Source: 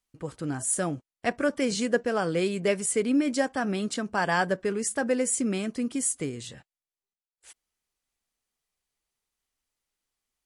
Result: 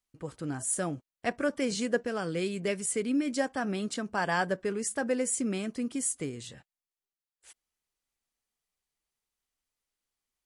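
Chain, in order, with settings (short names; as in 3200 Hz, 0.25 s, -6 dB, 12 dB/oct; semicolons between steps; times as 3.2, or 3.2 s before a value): 2.02–3.38 dynamic EQ 780 Hz, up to -5 dB, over -36 dBFS, Q 0.85; gain -3.5 dB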